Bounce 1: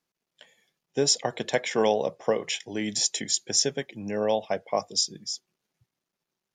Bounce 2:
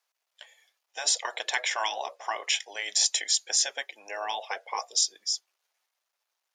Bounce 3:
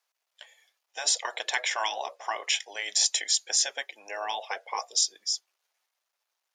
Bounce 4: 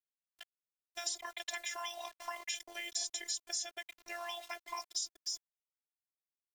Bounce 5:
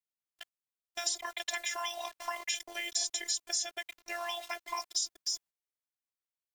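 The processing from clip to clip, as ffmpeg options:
-af "afftfilt=real='re*lt(hypot(re,im),0.224)':imag='im*lt(hypot(re,im),0.224)':win_size=1024:overlap=0.75,highpass=f=630:w=0.5412,highpass=f=630:w=1.3066,volume=1.58"
-af anull
-filter_complex "[0:a]aeval=exprs='val(0)*gte(abs(val(0)),0.0075)':c=same,afftfilt=real='hypot(re,im)*cos(PI*b)':imag='0':win_size=512:overlap=0.75,acrossover=split=1000|6700[s0][s1][s2];[s0]acompressor=threshold=0.00316:ratio=4[s3];[s1]acompressor=threshold=0.00891:ratio=4[s4];[s2]acompressor=threshold=0.00891:ratio=4[s5];[s3][s4][s5]amix=inputs=3:normalize=0"
-af "agate=range=0.355:threshold=0.00126:ratio=16:detection=peak,volume=1.78"

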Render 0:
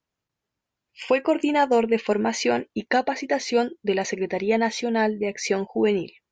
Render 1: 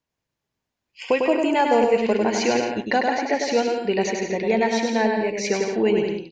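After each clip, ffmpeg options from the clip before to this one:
-filter_complex "[0:a]bandreject=f=1300:w=12,asplit=2[s0][s1];[s1]aecho=0:1:100|170|219|253.3|277.3:0.631|0.398|0.251|0.158|0.1[s2];[s0][s2]amix=inputs=2:normalize=0"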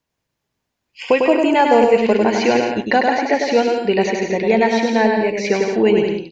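-filter_complex "[0:a]acrossover=split=4400[s0][s1];[s1]acompressor=threshold=0.00562:ratio=4:attack=1:release=60[s2];[s0][s2]amix=inputs=2:normalize=0,volume=1.88"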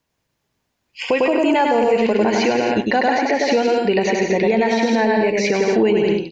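-af "alimiter=limit=0.251:level=0:latency=1:release=93,volume=1.58"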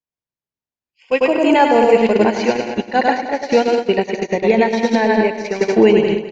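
-filter_complex "[0:a]agate=range=0.0316:threshold=0.178:ratio=16:detection=peak,asplit=2[s0][s1];[s1]aecho=0:1:206|412|618:0.251|0.0653|0.017[s2];[s0][s2]amix=inputs=2:normalize=0,volume=2"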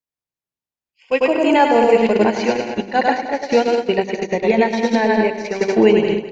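-af "bandreject=f=49.51:t=h:w=4,bandreject=f=99.02:t=h:w=4,bandreject=f=148.53:t=h:w=4,bandreject=f=198.04:t=h:w=4,bandreject=f=247.55:t=h:w=4,bandreject=f=297.06:t=h:w=4,bandreject=f=346.57:t=h:w=4,bandreject=f=396.08:t=h:w=4,bandreject=f=445.59:t=h:w=4,bandreject=f=495.1:t=h:w=4,volume=0.891"

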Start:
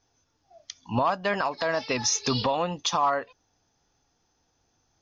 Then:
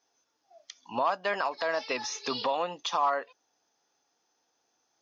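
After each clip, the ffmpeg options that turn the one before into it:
-filter_complex "[0:a]highpass=370,acrossover=split=3900[s0][s1];[s1]acompressor=threshold=0.0141:ratio=4:attack=1:release=60[s2];[s0][s2]amix=inputs=2:normalize=0,volume=0.75"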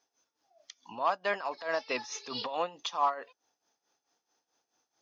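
-af "tremolo=f=4.6:d=0.76"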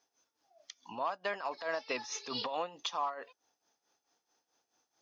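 -af "acompressor=threshold=0.0282:ratio=6"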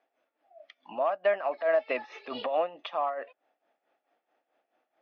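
-af "highpass=290,equalizer=f=430:t=q:w=4:g=-5,equalizer=f=620:t=q:w=4:g=9,equalizer=f=970:t=q:w=4:g=-9,equalizer=f=1500:t=q:w=4:g=-4,lowpass=f=2500:w=0.5412,lowpass=f=2500:w=1.3066,volume=2.24"

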